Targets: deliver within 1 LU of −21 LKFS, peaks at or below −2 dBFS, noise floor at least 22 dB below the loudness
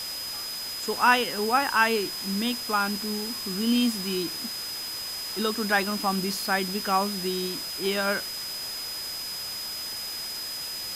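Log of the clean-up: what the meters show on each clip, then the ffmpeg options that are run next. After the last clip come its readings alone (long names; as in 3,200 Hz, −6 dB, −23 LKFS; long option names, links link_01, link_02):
interfering tone 5,000 Hz; level of the tone −33 dBFS; background noise floor −34 dBFS; target noise floor −49 dBFS; integrated loudness −27.0 LKFS; sample peak −6.5 dBFS; target loudness −21.0 LKFS
→ -af "bandreject=frequency=5000:width=30"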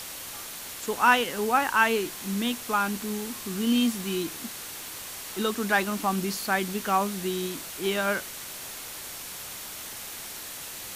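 interfering tone none found; background noise floor −39 dBFS; target noise floor −50 dBFS
→ -af "afftdn=noise_reduction=11:noise_floor=-39"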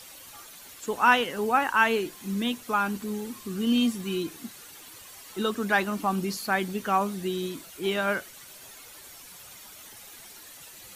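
background noise floor −47 dBFS; target noise floor −49 dBFS
→ -af "afftdn=noise_reduction=6:noise_floor=-47"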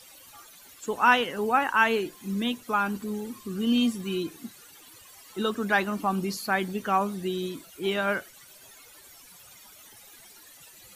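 background noise floor −52 dBFS; integrated loudness −27.0 LKFS; sample peak −7.0 dBFS; target loudness −21.0 LKFS
→ -af "volume=6dB,alimiter=limit=-2dB:level=0:latency=1"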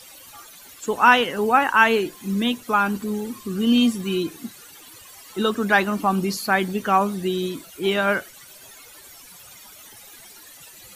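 integrated loudness −21.0 LKFS; sample peak −2.0 dBFS; background noise floor −46 dBFS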